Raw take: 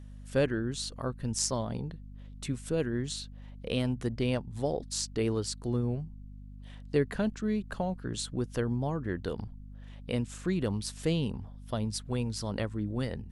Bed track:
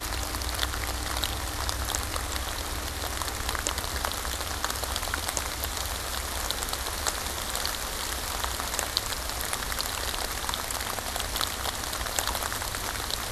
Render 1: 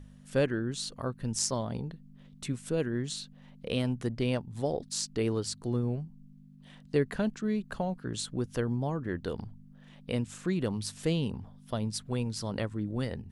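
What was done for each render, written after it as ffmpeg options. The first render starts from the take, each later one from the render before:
-af "bandreject=f=50:t=h:w=4,bandreject=f=100:t=h:w=4"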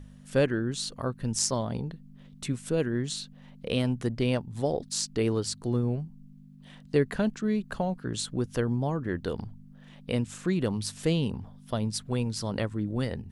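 -af "volume=1.41"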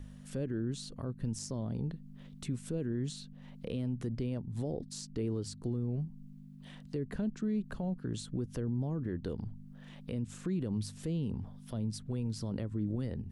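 -filter_complex "[0:a]acrossover=split=420[s0][s1];[s1]acompressor=threshold=0.002:ratio=2[s2];[s0][s2]amix=inputs=2:normalize=0,alimiter=level_in=1.33:limit=0.0631:level=0:latency=1:release=69,volume=0.75"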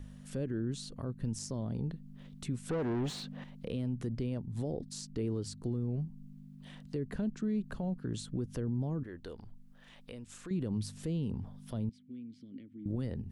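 -filter_complex "[0:a]asettb=1/sr,asplit=3[s0][s1][s2];[s0]atrim=end=2.694[s3];[s1]atrim=start=2.69:end=3.44,asetpts=PTS-STARTPTS,afade=t=in:d=0.004:c=qsin,afade=t=out:st=0.746:d=0.004:c=qsin,asplit=2[s4][s5];[s5]highpass=f=720:p=1,volume=17.8,asoftclip=type=tanh:threshold=0.0501[s6];[s4][s6]amix=inputs=2:normalize=0,lowpass=f=1600:p=1,volume=0.501[s7];[s2]atrim=start=3.436[s8];[s3][s7]acrossfade=d=0.004:c1=hsin:c2=qsin[s9];[s9][s8]acrossfade=d=0.004:c1=qsin:c2=hsin,asettb=1/sr,asplit=3[s10][s11][s12];[s10]atrim=end=9.034[s13];[s11]atrim=start=9.03:end=10.51,asetpts=PTS-STARTPTS,afade=t=in:d=0.004:c=qsin,afade=t=out:st=1.476:d=0.004:c=qsin,equalizer=f=140:t=o:w=2.8:g=-14[s14];[s12]atrim=start=10.506[s15];[s13][s14]acrossfade=d=0.004:c1=hsin:c2=qsin[s16];[s16][s15]acrossfade=d=0.004:c1=qsin:c2=hsin,asettb=1/sr,asplit=3[s17][s18][s19];[s17]atrim=end=11.894[s20];[s18]atrim=start=11.89:end=12.86,asetpts=PTS-STARTPTS,afade=t=in:d=0.004:c=qsin,afade=t=out:st=0.966:d=0.004:c=qsin,asplit=3[s21][s22][s23];[s21]bandpass=f=270:t=q:w=8,volume=1[s24];[s22]bandpass=f=2290:t=q:w=8,volume=0.501[s25];[s23]bandpass=f=3010:t=q:w=8,volume=0.355[s26];[s24][s25][s26]amix=inputs=3:normalize=0[s27];[s19]atrim=start=12.856[s28];[s20][s27]acrossfade=d=0.004:c1=hsin:c2=qsin[s29];[s29][s28]acrossfade=d=0.004:c1=qsin:c2=hsin"

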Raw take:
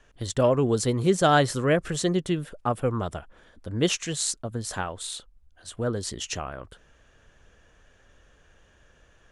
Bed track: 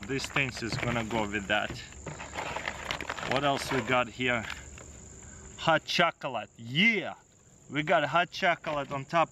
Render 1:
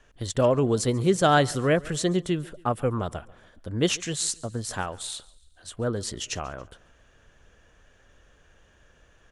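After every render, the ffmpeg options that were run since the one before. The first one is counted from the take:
-af "aecho=1:1:140|280|420:0.0708|0.034|0.0163"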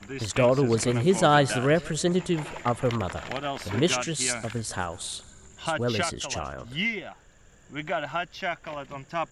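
-filter_complex "[1:a]volume=0.631[s0];[0:a][s0]amix=inputs=2:normalize=0"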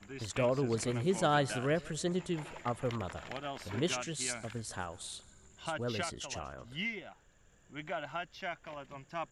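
-af "volume=0.335"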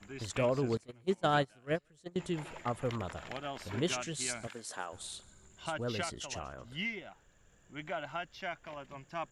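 -filter_complex "[0:a]asettb=1/sr,asplit=3[s0][s1][s2];[s0]atrim=end=0.774[s3];[s1]atrim=start=0.77:end=2.16,asetpts=PTS-STARTPTS,afade=t=in:d=0.004:c=qsin,afade=t=out:st=1.386:d=0.004:c=qsin,agate=range=0.0562:threshold=0.0316:ratio=16:release=100:detection=peak[s4];[s2]atrim=start=2.156[s5];[s3][s4]acrossfade=d=0.004:c1=hsin:c2=qsin[s6];[s6][s5]acrossfade=d=0.004:c1=qsin:c2=hsin,asettb=1/sr,asplit=3[s7][s8][s9];[s7]atrim=end=4.474[s10];[s8]atrim=start=4.47:end=4.93,asetpts=PTS-STARTPTS,afade=t=in:d=0.004:c=qsin,afade=t=out:st=0.456:d=0.004:c=qsin,highpass=330[s11];[s9]atrim=start=4.926[s12];[s10][s11]acrossfade=d=0.004:c1=hsin:c2=qsin[s13];[s13][s12]acrossfade=d=0.004:c1=qsin:c2=hsin"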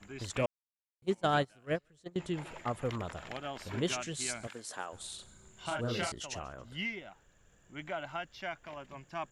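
-filter_complex "[0:a]asettb=1/sr,asplit=3[s0][s1][s2];[s0]atrim=end=1.744[s3];[s1]atrim=start=1.74:end=2.46,asetpts=PTS-STARTPTS,afade=t=in:d=0.004:c=qsin,afade=t=out:st=0.716:d=0.004:c=qsin,highshelf=f=10000:g=-8[s4];[s2]atrim=start=2.456[s5];[s3][s4]acrossfade=d=0.004:c1=hsin:c2=qsin[s6];[s6][s5]acrossfade=d=0.004:c1=qsin:c2=hsin,asettb=1/sr,asplit=3[s7][s8][s9];[s7]atrim=end=5.154[s10];[s8]atrim=start=5.15:end=6.12,asetpts=PTS-STARTPTS,afade=t=in:d=0.004:c=qsin,afade=t=out:st=0.966:d=0.004:c=qsin,asplit=2[s11][s12];[s12]adelay=34,volume=0.708[s13];[s11][s13]amix=inputs=2:normalize=0,atrim=end_sample=42777[s14];[s9]atrim=start=6.116[s15];[s10][s14]acrossfade=d=0.004:c1=hsin:c2=qsin[s16];[s16][s15]acrossfade=d=0.004:c1=qsin:c2=hsin,asplit=3[s17][s18][s19];[s17]atrim=end=0.46,asetpts=PTS-STARTPTS,afade=t=out:st=0.456:d=0.004:c=hsin[s20];[s18]atrim=start=0.46:end=1.02,asetpts=PTS-STARTPTS,volume=0[s21];[s19]atrim=start=1.02,asetpts=PTS-STARTPTS,afade=t=in:d=0.004:c=hsin[s22];[s20][s21][s22]concat=n=3:v=0:a=1"

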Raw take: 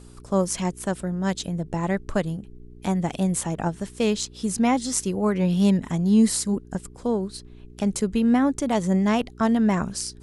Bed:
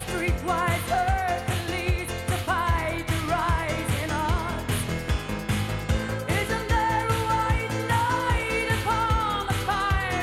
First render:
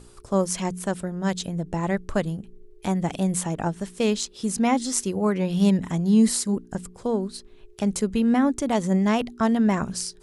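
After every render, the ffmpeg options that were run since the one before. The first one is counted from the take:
-af "bandreject=f=60:t=h:w=4,bandreject=f=120:t=h:w=4,bandreject=f=180:t=h:w=4,bandreject=f=240:t=h:w=4,bandreject=f=300:t=h:w=4"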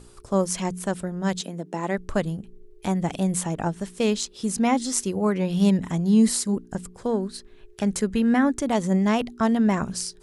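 -filter_complex "[0:a]asettb=1/sr,asplit=3[s0][s1][s2];[s0]atrim=end=1.414[s3];[s1]atrim=start=1.41:end=1.98,asetpts=PTS-STARTPTS,afade=t=in:d=0.004:c=qsin,afade=t=out:st=0.566:d=0.004:c=qsin,highpass=f=200:w=0.5412,highpass=f=200:w=1.3066[s4];[s2]atrim=start=1.976[s5];[s3][s4]acrossfade=d=0.004:c1=hsin:c2=qsin[s6];[s6][s5]acrossfade=d=0.004:c1=qsin:c2=hsin,asettb=1/sr,asplit=3[s7][s8][s9];[s7]atrim=end=6.974[s10];[s8]atrim=start=6.97:end=8.61,asetpts=PTS-STARTPTS,afade=t=in:d=0.004:c=qsin,afade=t=out:st=1.636:d=0.004:c=qsin,equalizer=f=1700:w=3:g=7[s11];[s9]atrim=start=8.606[s12];[s10][s11]acrossfade=d=0.004:c1=hsin:c2=qsin[s13];[s13][s12]acrossfade=d=0.004:c1=qsin:c2=hsin"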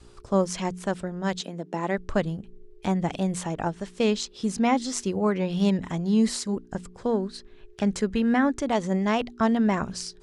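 -af "lowpass=5800,adynamicequalizer=threshold=0.0178:dfrequency=180:dqfactor=0.94:tfrequency=180:tqfactor=0.94:attack=5:release=100:ratio=0.375:range=2.5:mode=cutabove:tftype=bell"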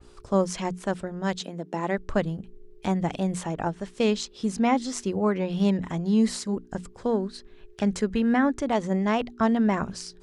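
-af "bandreject=f=59.9:t=h:w=4,bandreject=f=119.8:t=h:w=4,bandreject=f=179.7:t=h:w=4,adynamicequalizer=threshold=0.00631:dfrequency=2700:dqfactor=0.7:tfrequency=2700:tqfactor=0.7:attack=5:release=100:ratio=0.375:range=2:mode=cutabove:tftype=highshelf"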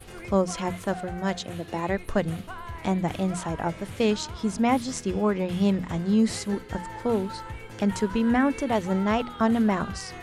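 -filter_complex "[1:a]volume=0.188[s0];[0:a][s0]amix=inputs=2:normalize=0"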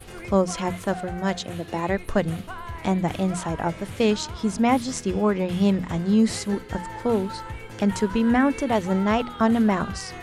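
-af "volume=1.33"

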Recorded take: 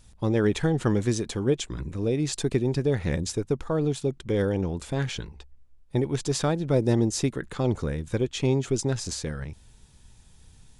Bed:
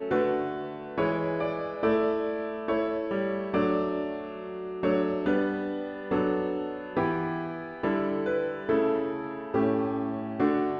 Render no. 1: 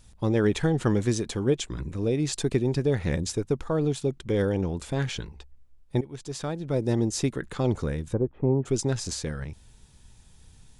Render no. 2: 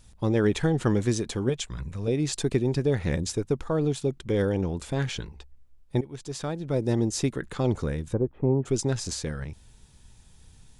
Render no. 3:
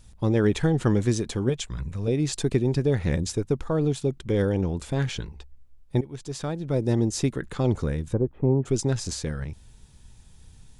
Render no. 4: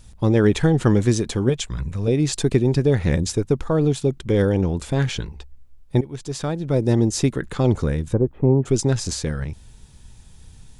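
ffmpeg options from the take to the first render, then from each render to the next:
-filter_complex "[0:a]asplit=3[s0][s1][s2];[s0]afade=t=out:st=8.12:d=0.02[s3];[s1]lowpass=f=1100:w=0.5412,lowpass=f=1100:w=1.3066,afade=t=in:st=8.12:d=0.02,afade=t=out:st=8.65:d=0.02[s4];[s2]afade=t=in:st=8.65:d=0.02[s5];[s3][s4][s5]amix=inputs=3:normalize=0,asplit=2[s6][s7];[s6]atrim=end=6.01,asetpts=PTS-STARTPTS,afade=t=out:st=6.006:d=0.004:c=hsin:silence=0.177828[s8];[s7]atrim=start=6.01,asetpts=PTS-STARTPTS,afade=t=in:d=1.34:silence=0.177828[s9];[s8][s9]concat=n=2:v=0:a=1"
-filter_complex "[0:a]asettb=1/sr,asplit=3[s0][s1][s2];[s0]atrim=end=1.494[s3];[s1]atrim=start=1.49:end=2.08,asetpts=PTS-STARTPTS,afade=t=in:d=0.004:c=qsin,afade=t=out:st=0.586:d=0.004:c=qsin,equalizer=f=320:t=o:w=0.81:g=-13[s4];[s2]atrim=start=2.076[s5];[s3][s4]acrossfade=d=0.004:c1=hsin:c2=qsin[s6];[s6][s5]acrossfade=d=0.004:c1=qsin:c2=hsin"
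-af "lowshelf=f=230:g=3.5"
-af "volume=1.78"

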